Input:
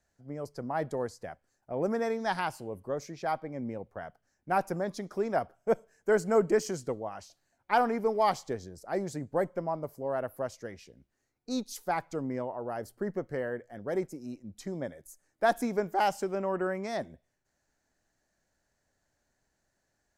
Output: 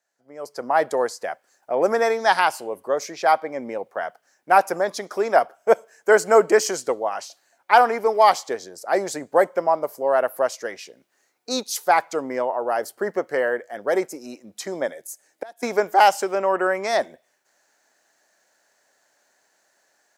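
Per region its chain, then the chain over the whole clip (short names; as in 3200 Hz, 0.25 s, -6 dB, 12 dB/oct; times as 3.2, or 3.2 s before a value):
14.92–15.63 bell 1200 Hz -7 dB + flipped gate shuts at -26 dBFS, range -29 dB
whole clip: HPF 520 Hz 12 dB/oct; AGC gain up to 15 dB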